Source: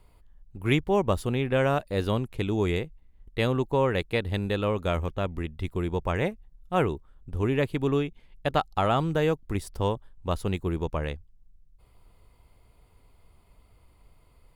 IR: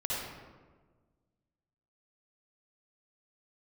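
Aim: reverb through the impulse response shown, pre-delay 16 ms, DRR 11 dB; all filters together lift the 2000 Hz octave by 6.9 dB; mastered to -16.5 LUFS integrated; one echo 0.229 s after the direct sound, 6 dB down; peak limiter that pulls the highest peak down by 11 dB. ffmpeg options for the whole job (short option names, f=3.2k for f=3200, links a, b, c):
-filter_complex "[0:a]equalizer=f=2k:t=o:g=8.5,alimiter=limit=-15.5dB:level=0:latency=1,aecho=1:1:229:0.501,asplit=2[a][b];[1:a]atrim=start_sample=2205,adelay=16[c];[b][c]afir=irnorm=-1:irlink=0,volume=-16.5dB[d];[a][d]amix=inputs=2:normalize=0,volume=11dB"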